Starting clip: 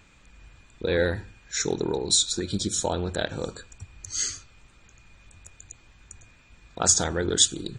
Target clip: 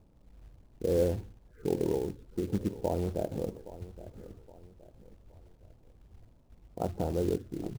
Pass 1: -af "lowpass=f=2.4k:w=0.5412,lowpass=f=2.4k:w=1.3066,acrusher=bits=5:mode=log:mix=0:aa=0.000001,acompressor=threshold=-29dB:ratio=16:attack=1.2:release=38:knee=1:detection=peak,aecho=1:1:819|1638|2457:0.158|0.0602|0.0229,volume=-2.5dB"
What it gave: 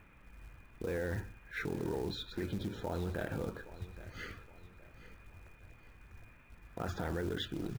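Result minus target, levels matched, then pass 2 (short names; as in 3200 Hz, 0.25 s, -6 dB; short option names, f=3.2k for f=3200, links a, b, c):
2000 Hz band +19.0 dB; compressor: peak gain reduction +15 dB
-af "lowpass=f=750:w=0.5412,lowpass=f=750:w=1.3066,acrusher=bits=5:mode=log:mix=0:aa=0.000001,aecho=1:1:819|1638|2457:0.158|0.0602|0.0229,volume=-2.5dB"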